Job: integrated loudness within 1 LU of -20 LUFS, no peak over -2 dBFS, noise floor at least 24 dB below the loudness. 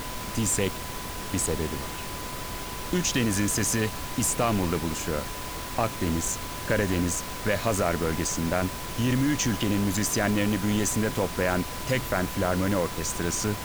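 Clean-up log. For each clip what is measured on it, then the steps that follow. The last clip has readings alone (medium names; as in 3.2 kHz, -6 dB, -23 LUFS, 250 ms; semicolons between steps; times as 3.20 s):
steady tone 1 kHz; tone level -41 dBFS; noise floor -35 dBFS; noise floor target -51 dBFS; loudness -27.0 LUFS; peak level -10.0 dBFS; loudness target -20.0 LUFS
-> band-stop 1 kHz, Q 30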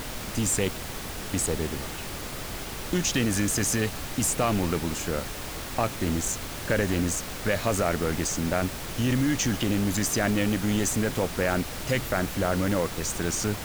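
steady tone not found; noise floor -36 dBFS; noise floor target -51 dBFS
-> noise print and reduce 15 dB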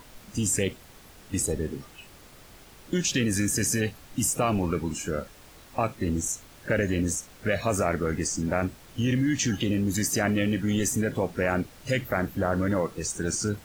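noise floor -51 dBFS; noise floor target -52 dBFS
-> noise print and reduce 6 dB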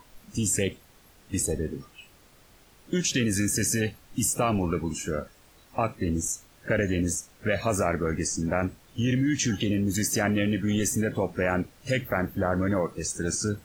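noise floor -57 dBFS; loudness -27.5 LUFS; peak level -10.5 dBFS; loudness target -20.0 LUFS
-> trim +7.5 dB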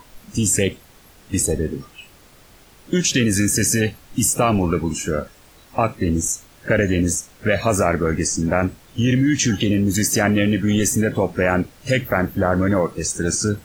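loudness -20.0 LUFS; peak level -3.0 dBFS; noise floor -49 dBFS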